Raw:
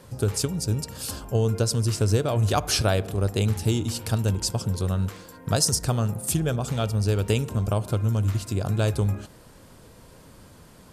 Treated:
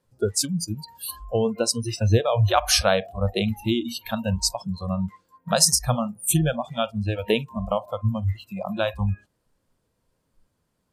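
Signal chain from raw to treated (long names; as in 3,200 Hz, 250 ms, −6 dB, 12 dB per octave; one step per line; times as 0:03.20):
noise reduction from a noise print of the clip's start 29 dB
level +5 dB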